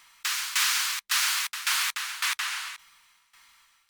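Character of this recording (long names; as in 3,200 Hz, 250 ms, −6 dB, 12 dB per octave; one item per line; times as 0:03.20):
tremolo saw down 1.8 Hz, depth 85%
MP3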